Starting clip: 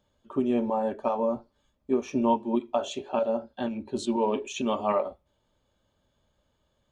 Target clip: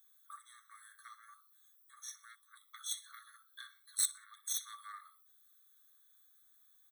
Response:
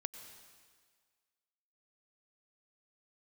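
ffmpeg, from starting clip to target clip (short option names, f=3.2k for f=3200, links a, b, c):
-filter_complex "[0:a]acompressor=threshold=-35dB:ratio=1.5,aemphasis=mode=production:type=75kf,aecho=1:1:62|124|186:0.188|0.0603|0.0193,asoftclip=type=tanh:threshold=-25.5dB,aexciter=amount=8:drive=2.7:freq=8k,aeval=exprs='0.2*(cos(1*acos(clip(val(0)/0.2,-1,1)))-cos(1*PI/2))+0.02*(cos(2*acos(clip(val(0)/0.2,-1,1)))-cos(2*PI/2))+0.0398*(cos(3*acos(clip(val(0)/0.2,-1,1)))-cos(3*PI/2))':c=same,acrossover=split=300|3000[a][b][c];[b]acompressor=threshold=-43dB:ratio=6[d];[a][d][c]amix=inputs=3:normalize=0,afftfilt=real='re*eq(mod(floor(b*sr/1024/1100),2),1)':imag='im*eq(mod(floor(b*sr/1024/1100),2),1)':win_size=1024:overlap=0.75,volume=3.5dB"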